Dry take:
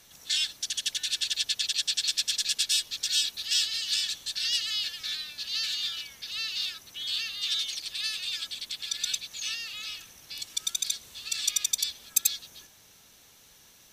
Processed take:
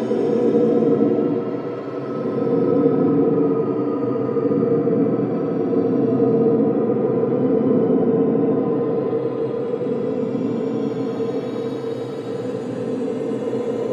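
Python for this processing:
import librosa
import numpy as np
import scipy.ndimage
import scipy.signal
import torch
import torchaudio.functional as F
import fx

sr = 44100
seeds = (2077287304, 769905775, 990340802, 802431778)

p1 = fx.octave_mirror(x, sr, pivot_hz=1300.0)
p2 = fx.rider(p1, sr, range_db=10, speed_s=0.5)
p3 = p1 + F.gain(torch.from_numpy(p2), 1.0).numpy()
p4 = fx.tilt_shelf(p3, sr, db=-8.5, hz=760.0)
p5 = fx.env_lowpass_down(p4, sr, base_hz=490.0, full_db=-14.0)
p6 = fx.highpass(p5, sr, hz=350.0, slope=6)
p7 = fx.high_shelf(p6, sr, hz=7000.0, db=-6.5)
p8 = p7 + fx.echo_bbd(p7, sr, ms=117, stages=2048, feedback_pct=73, wet_db=-6.0, dry=0)
p9 = fx.paulstretch(p8, sr, seeds[0], factor=22.0, window_s=0.1, from_s=10.54)
y = F.gain(torch.from_numpy(p9), 8.5).numpy()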